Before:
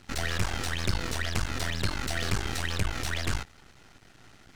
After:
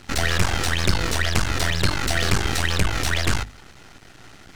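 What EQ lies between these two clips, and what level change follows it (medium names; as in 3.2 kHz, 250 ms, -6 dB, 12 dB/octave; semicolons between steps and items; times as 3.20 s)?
hum notches 50/100/150/200/250 Hz; +9.0 dB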